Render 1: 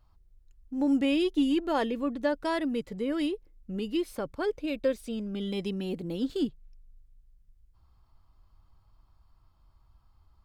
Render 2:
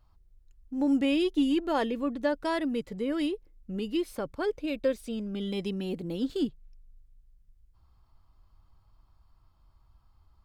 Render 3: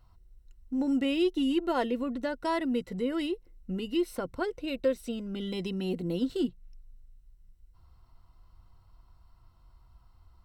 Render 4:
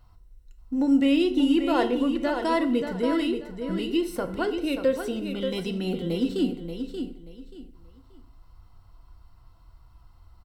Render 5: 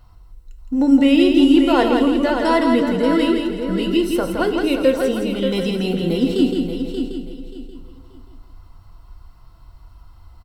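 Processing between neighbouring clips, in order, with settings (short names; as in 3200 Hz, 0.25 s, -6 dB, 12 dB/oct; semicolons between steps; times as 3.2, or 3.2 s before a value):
nothing audible
in parallel at +2 dB: compressor, threshold -37 dBFS, peak gain reduction 15 dB; on the sum: ripple EQ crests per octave 2, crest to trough 8 dB; gain -4 dB
feedback echo 0.582 s, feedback 25%, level -7.5 dB; FDN reverb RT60 0.64 s, low-frequency decay 0.9×, high-frequency decay 0.75×, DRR 8 dB; gain +4 dB
feedback echo 0.166 s, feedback 32%, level -5 dB; gain +7 dB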